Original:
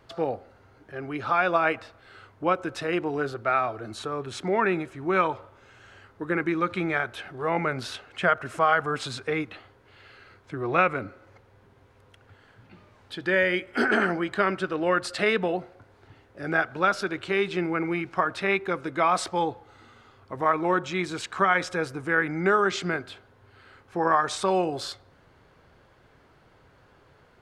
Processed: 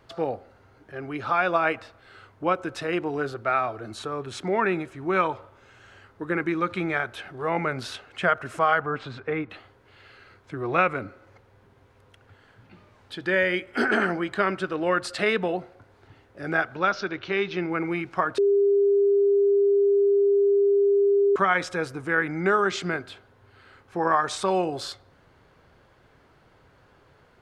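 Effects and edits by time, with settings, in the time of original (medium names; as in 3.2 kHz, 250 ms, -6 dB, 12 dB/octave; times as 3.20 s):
8.80–9.50 s: low-pass 2.2 kHz
16.75–17.71 s: elliptic low-pass 6 kHz
18.38–21.36 s: bleep 401 Hz -16.5 dBFS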